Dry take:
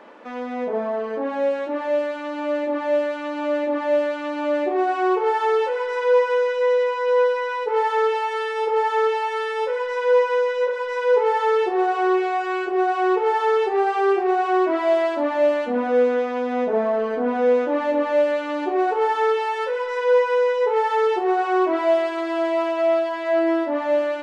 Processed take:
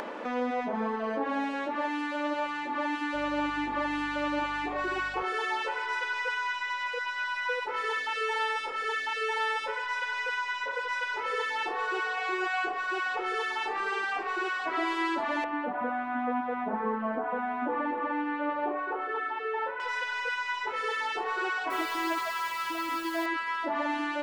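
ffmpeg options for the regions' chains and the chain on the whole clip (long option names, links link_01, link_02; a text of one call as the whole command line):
ffmpeg -i in.wav -filter_complex "[0:a]asettb=1/sr,asplit=3[link_01][link_02][link_03];[link_01]atrim=end=3.144[link_04];[link_02]atrim=start=3.14:end=5.23,asetpts=PTS-STARTPTS,afade=type=in:duration=0.004:curve=qsin,afade=type=out:start_time=2.086:duration=0.004:curve=qsin,asplit=2[link_05][link_06];[link_06]adelay=39,volume=-11dB[link_07];[link_05][link_07]amix=inputs=2:normalize=0,atrim=end_sample=92169,aeval=exprs='val(0)+0.00355*(sin(2*PI*50*n/s)+sin(2*PI*2*50*n/s)/2+sin(2*PI*3*50*n/s)/3+sin(2*PI*4*50*n/s)/4+sin(2*PI*5*50*n/s)/5)':channel_layout=same[link_08];[link_03]atrim=start=5.226[link_09];[link_04][link_08]acrossfade=duration=0.004:curve1=hsin:curve2=qsin[link_10];[link_10][link_09]acrossfade=duration=0.004:curve1=qsin:curve2=hsin,asettb=1/sr,asplit=3[link_11][link_12][link_13];[link_11]atrim=end=15.444[link_14];[link_12]atrim=start=15.44:end=19.8,asetpts=PTS-STARTPTS,afade=type=in:duration=0.004:curve=qsin,afade=type=out:start_time=4.356:duration=0.004:curve=qsin,lowpass=1500,lowshelf=frequency=95:gain=-7[link_15];[link_13]atrim=start=19.796[link_16];[link_14][link_15]acrossfade=duration=0.004:curve1=hsin:curve2=qsin[link_17];[link_17][link_16]acrossfade=duration=0.004:curve1=qsin:curve2=hsin,asettb=1/sr,asplit=3[link_18][link_19][link_20];[link_18]atrim=end=21.704[link_21];[link_19]atrim=start=21.7:end=23.26,asetpts=PTS-STARTPTS,afade=type=in:duration=0.004:curve=qsin,afade=type=out:start_time=1.556:duration=0.004:curve=qsin,highshelf=frequency=4800:gain=5,acrusher=bits=6:mix=0:aa=0.5,asplit=2[link_22][link_23];[link_23]adelay=18,volume=-8.5dB[link_24];[link_22][link_24]amix=inputs=2:normalize=0,atrim=end_sample=68796[link_25];[link_20]atrim=start=23.256[link_26];[link_21][link_25]acrossfade=duration=0.004:curve1=hsin:curve2=qsin[link_27];[link_27][link_26]acrossfade=duration=0.004:curve1=qsin:curve2=hsin,acompressor=mode=upward:threshold=-30dB:ratio=2.5,afftfilt=real='re*lt(hypot(re,im),0.355)':imag='im*lt(hypot(re,im),0.355)':win_size=1024:overlap=0.75" out.wav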